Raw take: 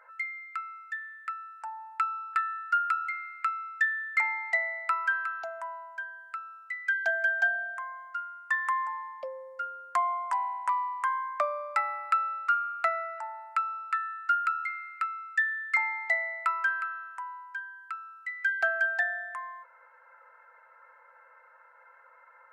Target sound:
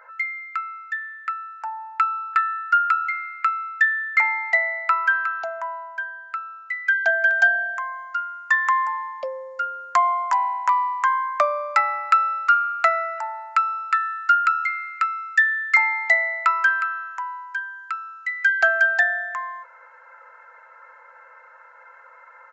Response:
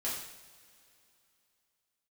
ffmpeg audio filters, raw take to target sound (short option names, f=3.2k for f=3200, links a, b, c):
-af "asetnsamples=n=441:p=0,asendcmd='7.31 highshelf g 9',highshelf=f=5.2k:g=-4,aresample=16000,aresample=44100,volume=8.5dB"